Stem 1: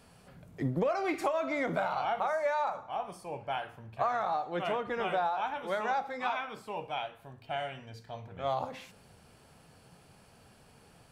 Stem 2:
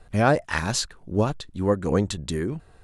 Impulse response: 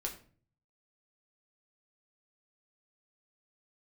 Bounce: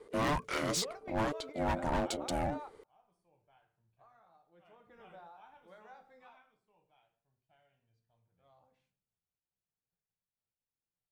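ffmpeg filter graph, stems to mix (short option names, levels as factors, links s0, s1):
-filter_complex "[0:a]agate=range=0.0224:threshold=0.00355:ratio=3:detection=peak,lowshelf=f=170:g=8,acrusher=bits=10:mix=0:aa=0.000001,volume=0.447,afade=t=in:st=4.61:d=0.4:silence=0.334965,afade=t=out:st=6.14:d=0.43:silence=0.281838,asplit=2[s0][s1];[s1]volume=0.0944[s2];[1:a]aeval=exprs='val(0)*sin(2*PI*440*n/s)':c=same,asoftclip=type=hard:threshold=0.0596,volume=0.708,asplit=2[s3][s4];[s4]apad=whole_len=490049[s5];[s0][s5]sidechaingate=range=0.0501:threshold=0.00398:ratio=16:detection=peak[s6];[2:a]atrim=start_sample=2205[s7];[s2][s7]afir=irnorm=-1:irlink=0[s8];[s6][s3][s8]amix=inputs=3:normalize=0"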